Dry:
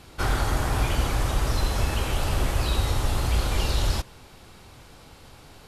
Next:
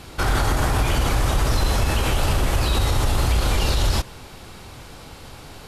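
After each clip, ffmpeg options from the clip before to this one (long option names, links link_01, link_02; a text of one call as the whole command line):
ffmpeg -i in.wav -af "alimiter=limit=-19dB:level=0:latency=1:release=51,volume=8dB" out.wav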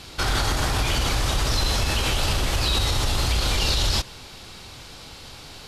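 ffmpeg -i in.wav -af "equalizer=frequency=4400:width_type=o:width=1.8:gain=9.5,volume=-4dB" out.wav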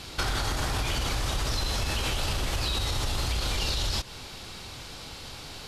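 ffmpeg -i in.wav -af "acompressor=threshold=-25dB:ratio=6" out.wav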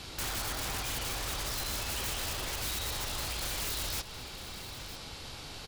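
ffmpeg -i in.wav -filter_complex "[0:a]acrossover=split=350[link_01][link_02];[link_01]alimiter=level_in=10dB:limit=-24dB:level=0:latency=1,volume=-10dB[link_03];[link_02]aeval=exprs='(mod(22.4*val(0)+1,2)-1)/22.4':channel_layout=same[link_04];[link_03][link_04]amix=inputs=2:normalize=0,aecho=1:1:959:0.2,volume=-3dB" out.wav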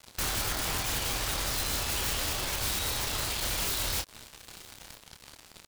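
ffmpeg -i in.wav -filter_complex "[0:a]asplit=2[link_01][link_02];[link_02]asoftclip=type=hard:threshold=-35.5dB,volume=-4dB[link_03];[link_01][link_03]amix=inputs=2:normalize=0,acrusher=bits=4:mix=0:aa=0.5,asplit=2[link_04][link_05];[link_05]adelay=27,volume=-7dB[link_06];[link_04][link_06]amix=inputs=2:normalize=0" out.wav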